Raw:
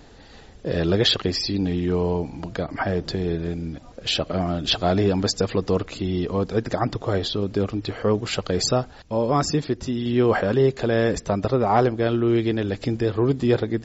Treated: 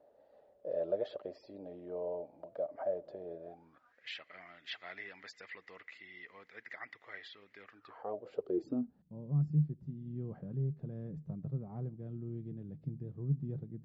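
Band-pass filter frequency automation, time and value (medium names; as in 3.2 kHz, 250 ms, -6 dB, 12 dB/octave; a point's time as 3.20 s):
band-pass filter, Q 12
3.43 s 590 Hz
4.01 s 2 kHz
7.64 s 2 kHz
8.17 s 600 Hz
9.17 s 150 Hz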